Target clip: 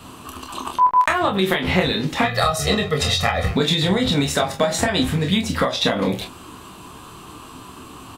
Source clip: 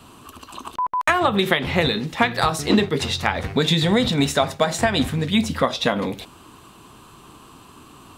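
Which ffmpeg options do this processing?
-filter_complex "[0:a]asettb=1/sr,asplit=3[a][b][c];[a]atrim=end=2.234[d];[b]atrim=start=2.23:end=3.51,asetpts=PTS-STARTPTS,afade=t=in:d=0.004:c=qsin,afade=t=out:st=1.276:d=0.004:c=qsin,aecho=1:1:1.6:0.95,atrim=end_sample=56448[e];[c]atrim=start=3.506[f];[d][e]acrossfade=d=0.004:c1=hsin:c2=qsin[g];[g][f]acrossfade=d=0.004:c1=qsin:c2=hsin,acompressor=threshold=-21dB:ratio=10,asplit=2[h][i];[i]aecho=0:1:11|27|43:0.316|0.596|0.299[j];[h][j]amix=inputs=2:normalize=0,volume=4.5dB"

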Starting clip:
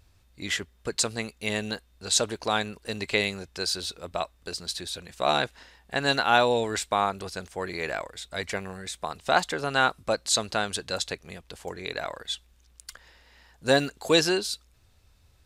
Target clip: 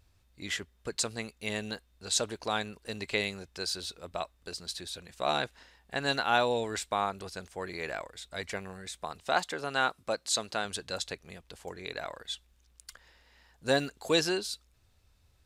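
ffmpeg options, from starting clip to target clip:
-filter_complex "[0:a]asettb=1/sr,asplit=3[a][b][c];[a]atrim=end=9.234[d];[b]atrim=start=9.23:end=10.65,asetpts=PTS-STARTPTS,afade=t=in:d=0.004:c=qsin,afade=t=out:st=1.416:d=0.004:c=qsin,lowshelf=f=97:g=-12[e];[c]atrim=start=10.646[f];[d][e]acrossfade=d=0.004:c1=hsin:c2=qsin[g];[g][f]acrossfade=d=0.004:c1=qsin:c2=hsin,volume=-5.5dB"

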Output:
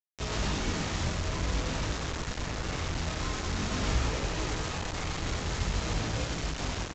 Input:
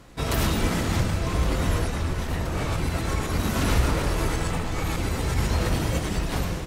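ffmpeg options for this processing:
-af "flanger=delay=17:depth=6.4:speed=0.5,aresample=16000,acrusher=bits=4:mix=0:aa=0.000001,aresample=44100,aecho=1:1:88:0.335,asetrate=42336,aresample=44100,volume=-5.5dB"

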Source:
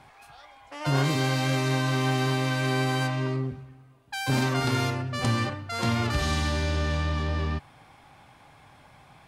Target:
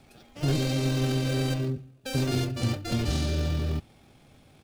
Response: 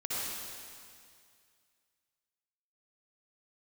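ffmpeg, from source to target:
-filter_complex "[0:a]acrossover=split=180|730|2300[a][b][c][d];[c]acrusher=samples=42:mix=1:aa=0.000001[e];[a][b][e][d]amix=inputs=4:normalize=0,atempo=2"

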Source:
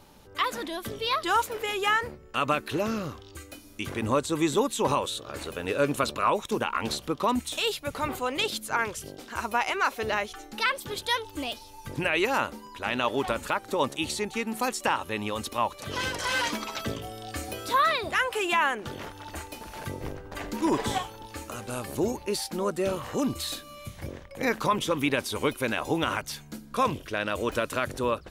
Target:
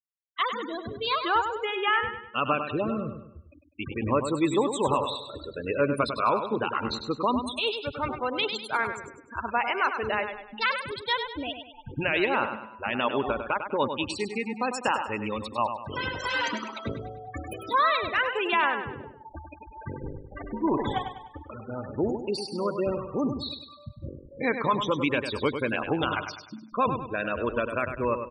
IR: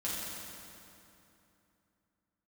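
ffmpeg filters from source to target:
-af "afftfilt=real='re*gte(hypot(re,im),0.0447)':imag='im*gte(hypot(re,im),0.0447)':win_size=1024:overlap=0.75,aecho=1:1:100|200|300|400|500:0.398|0.163|0.0669|0.0274|0.0112"

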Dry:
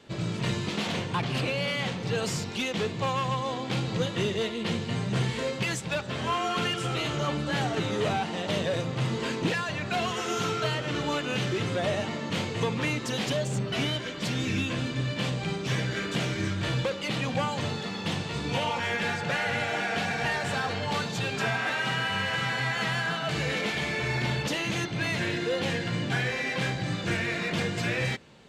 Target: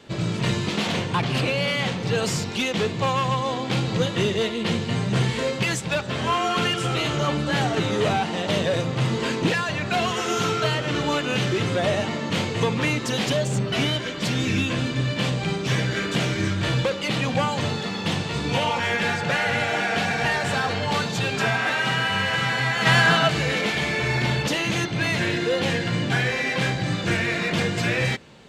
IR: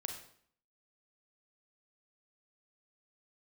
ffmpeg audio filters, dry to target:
-filter_complex "[0:a]asplit=3[a][b][c];[a]afade=t=out:st=22.85:d=0.02[d];[b]acontrast=74,afade=t=in:st=22.85:d=0.02,afade=t=out:st=23.27:d=0.02[e];[c]afade=t=in:st=23.27:d=0.02[f];[d][e][f]amix=inputs=3:normalize=0,volume=5.5dB"

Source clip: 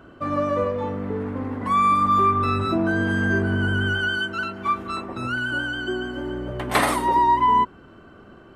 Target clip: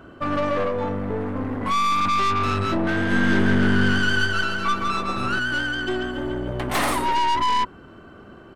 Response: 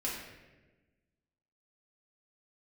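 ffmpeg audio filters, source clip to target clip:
-filter_complex "[0:a]aeval=exprs='(tanh(15.8*val(0)+0.55)-tanh(0.55))/15.8':c=same,asplit=3[a][b][c];[a]afade=t=out:st=3.1:d=0.02[d];[b]aecho=1:1:160|288|390.4|472.3|537.9:0.631|0.398|0.251|0.158|0.1,afade=t=in:st=3.1:d=0.02,afade=t=out:st=5.38:d=0.02[e];[c]afade=t=in:st=5.38:d=0.02[f];[d][e][f]amix=inputs=3:normalize=0,volume=5dB"

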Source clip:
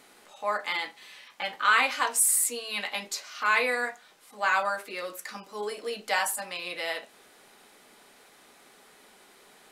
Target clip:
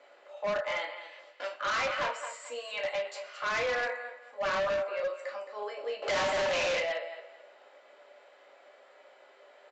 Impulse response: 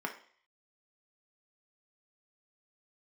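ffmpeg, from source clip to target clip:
-filter_complex "[0:a]asettb=1/sr,asplit=3[a][b][c];[a]atrim=end=1.194[d];[b]atrim=start=1.19:end=1.59,asetpts=PTS-STARTPTS,afade=t=in:d=0.004:c=qsin,afade=t=out:st=0.396:d=0.004:c=qsin,aeval=exprs='abs(val(0))':c=same[e];[c]atrim=start=1.586[f];[d][e]acrossfade=d=0.004:c1=hsin:c2=qsin[g];[g][f]acrossfade=d=0.004:c1=qsin:c2=hsin,asplit=3[h][i][j];[h]afade=t=out:st=4.57:d=0.02[k];[i]tremolo=f=130:d=0.462,afade=t=in:st=4.57:d=0.02,afade=t=out:st=5.03:d=0.02[l];[j]afade=t=in:st=5.03:d=0.02[m];[k][l][m]amix=inputs=3:normalize=0,highpass=f=560:t=q:w=4.9,aecho=1:1:219|438|657:0.251|0.0603|0.0145,asettb=1/sr,asplit=3[n][o][p];[n]atrim=end=6.024[q];[o]atrim=start=6.02:end=6.79,asetpts=PTS-STARTPTS,afade=t=in:d=0.004:c=qsin,afade=t=out:st=0.766:d=0.004:c=qsin,asplit=2[r][s];[s]highpass=f=720:p=1,volume=27dB,asoftclip=type=tanh:threshold=-7dB[t];[r][t]amix=inputs=2:normalize=0,lowpass=f=3.4k:p=1,volume=-6dB[u];[p]atrim=start=6.786[v];[q][u]acrossfade=d=0.004:c1=hsin:c2=qsin[w];[w][v]acrossfade=d=0.004:c1=qsin:c2=hsin[x];[1:a]atrim=start_sample=2205,asetrate=61740,aresample=44100[y];[x][y]afir=irnorm=-1:irlink=0,asoftclip=type=hard:threshold=-21.5dB,aresample=16000,aresample=44100,volume=-6dB"

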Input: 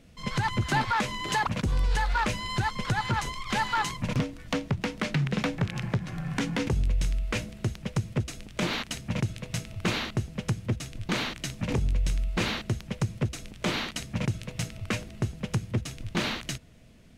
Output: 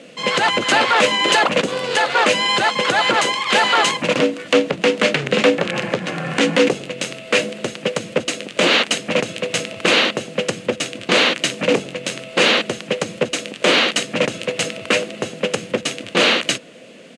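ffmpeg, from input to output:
-filter_complex "[0:a]apsyclip=26.5dB,asplit=2[a][b];[b]asetrate=35002,aresample=44100,atempo=1.25992,volume=-10dB[c];[a][c]amix=inputs=2:normalize=0,highpass=f=220:w=0.5412,highpass=f=220:w=1.3066,equalizer=f=230:t=q:w=4:g=-3,equalizer=f=520:t=q:w=4:g=9,equalizer=f=920:t=q:w=4:g=-4,equalizer=f=2.8k:t=q:w=4:g=5,equalizer=f=5.5k:t=q:w=4:g=-5,lowpass=f=9.2k:w=0.5412,lowpass=f=9.2k:w=1.3066,volume=-10dB"

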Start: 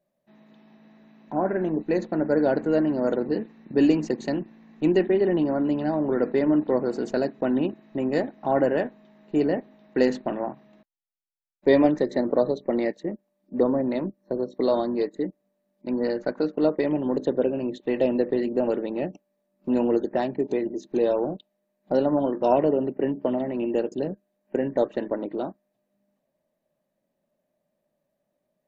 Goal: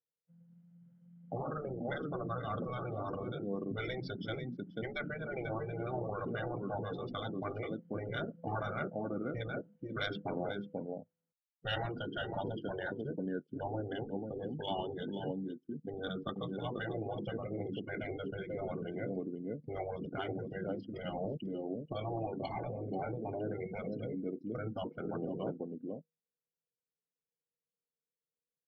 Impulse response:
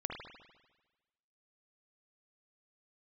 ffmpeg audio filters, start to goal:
-filter_complex "[0:a]adynamicsmooth=sensitivity=7:basefreq=4.8k,asplit=2[a][b];[b]aecho=0:1:488:0.376[c];[a][c]amix=inputs=2:normalize=0,asetrate=35002,aresample=44100,atempo=1.25992,afftfilt=real='re*lt(hypot(re,im),0.224)':imag='im*lt(hypot(re,im),0.224)':win_size=1024:overlap=0.75,acrossover=split=3200[d][e];[e]dynaudnorm=f=150:g=13:m=8dB[f];[d][f]amix=inputs=2:normalize=0,afftdn=nr=24:nf=-40,volume=-3.5dB"

